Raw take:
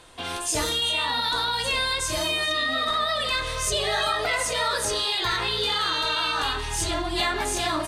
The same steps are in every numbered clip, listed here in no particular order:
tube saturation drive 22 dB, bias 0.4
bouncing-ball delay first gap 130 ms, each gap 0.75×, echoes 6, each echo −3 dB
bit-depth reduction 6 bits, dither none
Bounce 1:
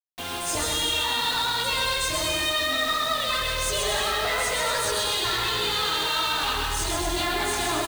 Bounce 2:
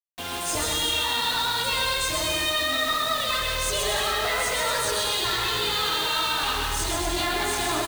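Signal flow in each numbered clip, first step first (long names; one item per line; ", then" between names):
tube saturation, then bouncing-ball delay, then bit-depth reduction
tube saturation, then bit-depth reduction, then bouncing-ball delay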